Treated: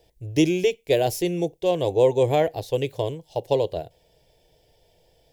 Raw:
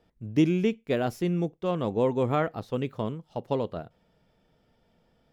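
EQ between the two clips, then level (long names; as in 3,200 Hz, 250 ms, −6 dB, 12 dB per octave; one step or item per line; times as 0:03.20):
high-shelf EQ 4,400 Hz +10 dB
phaser with its sweep stopped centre 530 Hz, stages 4
+8.0 dB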